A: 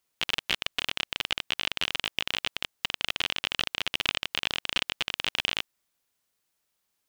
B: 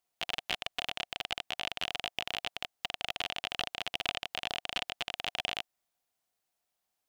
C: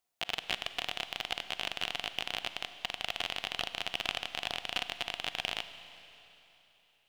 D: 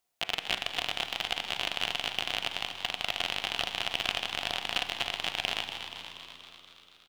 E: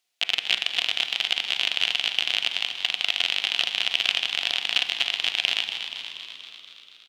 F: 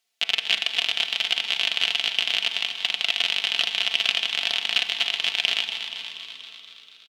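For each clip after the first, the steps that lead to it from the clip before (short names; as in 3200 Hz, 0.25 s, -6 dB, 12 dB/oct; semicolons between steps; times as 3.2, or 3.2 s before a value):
bell 720 Hz +11.5 dB 0.39 oct; gain -6.5 dB
Schroeder reverb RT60 3.4 s, combs from 33 ms, DRR 11 dB
de-hum 94.26 Hz, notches 28; frequency-shifting echo 0.239 s, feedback 63%, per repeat +88 Hz, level -9 dB; gain +3.5 dB
weighting filter D; gain -2.5 dB
comb 4.5 ms, depth 48%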